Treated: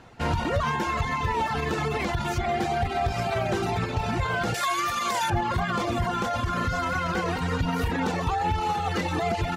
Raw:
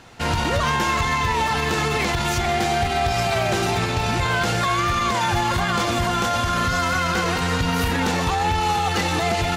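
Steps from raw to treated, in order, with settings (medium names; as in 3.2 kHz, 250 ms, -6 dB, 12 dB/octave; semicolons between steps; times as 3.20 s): 4.54–5.30 s: RIAA curve recording; reverb removal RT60 0.88 s; treble shelf 2.3 kHz -10 dB; trim -1.5 dB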